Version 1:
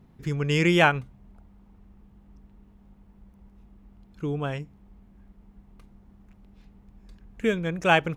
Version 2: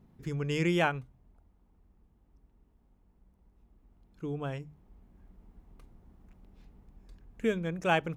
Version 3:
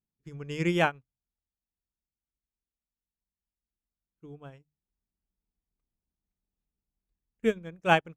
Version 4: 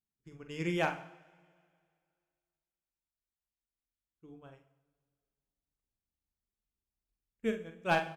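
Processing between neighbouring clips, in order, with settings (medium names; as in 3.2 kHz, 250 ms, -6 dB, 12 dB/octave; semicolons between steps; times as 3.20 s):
peaking EQ 2.6 kHz -3.5 dB 2.8 oct; hum notches 50/100/150/200 Hz; gain riding within 4 dB 2 s; trim -5.5 dB
upward expansion 2.5:1, over -49 dBFS; trim +6 dB
hard clipper -13 dBFS, distortion -18 dB; doubling 45 ms -8 dB; two-slope reverb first 0.61 s, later 2.2 s, from -18 dB, DRR 8.5 dB; trim -7 dB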